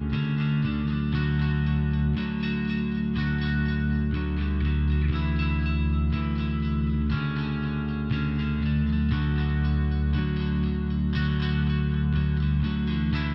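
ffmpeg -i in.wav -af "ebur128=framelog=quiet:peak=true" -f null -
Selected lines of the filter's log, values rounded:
Integrated loudness:
  I:         -26.1 LUFS
  Threshold: -36.1 LUFS
Loudness range:
  LRA:         1.0 LU
  Threshold: -46.2 LUFS
  LRA low:   -26.7 LUFS
  LRA high:  -25.7 LUFS
True peak:
  Peak:      -13.7 dBFS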